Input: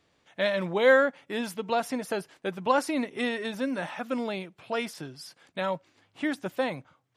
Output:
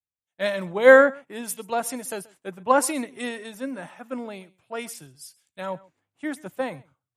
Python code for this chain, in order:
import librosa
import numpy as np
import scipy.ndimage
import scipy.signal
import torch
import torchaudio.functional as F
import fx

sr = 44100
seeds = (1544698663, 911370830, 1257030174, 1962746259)

y = fx.high_shelf_res(x, sr, hz=6200.0, db=7.5, q=1.5)
y = y + 10.0 ** (-19.5 / 20.0) * np.pad(y, (int(132 * sr / 1000.0), 0))[:len(y)]
y = fx.band_widen(y, sr, depth_pct=100)
y = y * librosa.db_to_amplitude(-1.0)